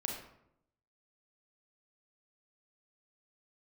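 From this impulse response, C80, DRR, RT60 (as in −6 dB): 7.0 dB, 0.0 dB, 0.75 s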